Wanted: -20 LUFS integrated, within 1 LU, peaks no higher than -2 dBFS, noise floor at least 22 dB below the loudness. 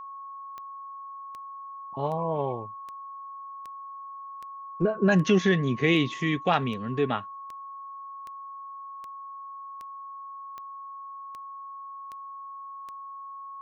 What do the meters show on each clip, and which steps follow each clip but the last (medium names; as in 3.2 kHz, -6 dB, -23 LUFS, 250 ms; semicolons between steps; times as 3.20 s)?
clicks found 17; steady tone 1.1 kHz; tone level -38 dBFS; loudness -31.0 LUFS; peak level -10.0 dBFS; loudness target -20.0 LUFS
-> de-click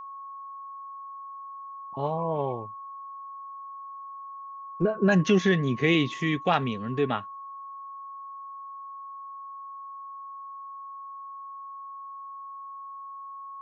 clicks found 0; steady tone 1.1 kHz; tone level -38 dBFS
-> band-stop 1.1 kHz, Q 30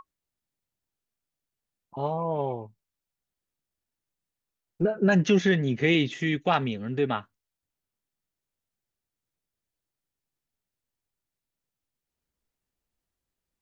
steady tone not found; loudness -25.5 LUFS; peak level -10.5 dBFS; loudness target -20.0 LUFS
-> trim +5.5 dB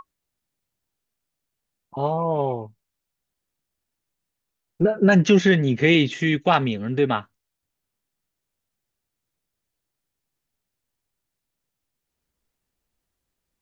loudness -20.0 LUFS; peak level -5.0 dBFS; noise floor -83 dBFS